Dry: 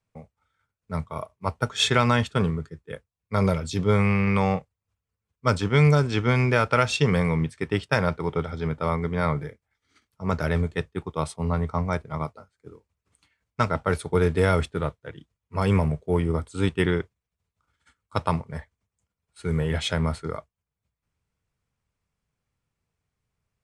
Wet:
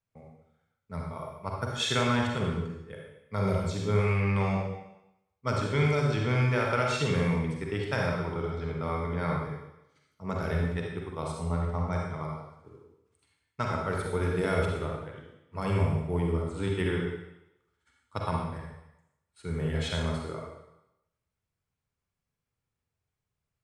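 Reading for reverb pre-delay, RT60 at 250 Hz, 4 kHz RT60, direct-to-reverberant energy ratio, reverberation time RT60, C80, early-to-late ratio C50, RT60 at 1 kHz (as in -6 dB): 39 ms, 0.85 s, 0.85 s, -1.0 dB, 0.90 s, 3.5 dB, 0.5 dB, 0.95 s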